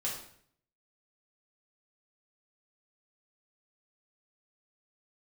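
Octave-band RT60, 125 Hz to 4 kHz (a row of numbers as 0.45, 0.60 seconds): 0.85, 0.70, 0.65, 0.55, 0.60, 0.55 seconds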